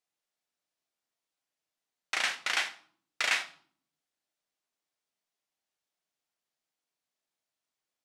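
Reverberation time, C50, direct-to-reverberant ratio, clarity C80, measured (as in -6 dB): 0.55 s, 13.0 dB, 6.5 dB, 18.0 dB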